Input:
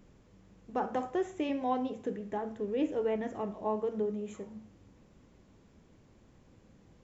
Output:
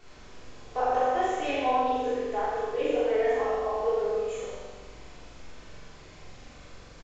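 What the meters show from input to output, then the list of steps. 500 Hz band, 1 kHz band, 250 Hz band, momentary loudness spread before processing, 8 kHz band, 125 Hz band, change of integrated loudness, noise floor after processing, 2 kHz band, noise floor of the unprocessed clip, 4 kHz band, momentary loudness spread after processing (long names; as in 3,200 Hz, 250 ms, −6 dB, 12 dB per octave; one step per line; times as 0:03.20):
+7.5 dB, +10.0 dB, −2.5 dB, 8 LU, can't be measured, +0.5 dB, +6.5 dB, −49 dBFS, +11.5 dB, −62 dBFS, +10.5 dB, 12 LU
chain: high-pass filter 480 Hz 24 dB per octave
comb filter 4 ms, depth 43%
downward compressor, threshold −32 dBFS, peak gain reduction 8.5 dB
background noise pink −62 dBFS
downsampling to 16,000 Hz
rectangular room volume 470 cubic metres, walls mixed, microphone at 3.4 metres
pitch vibrato 9.1 Hz 34 cents
flutter between parallel walls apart 7.4 metres, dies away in 0.97 s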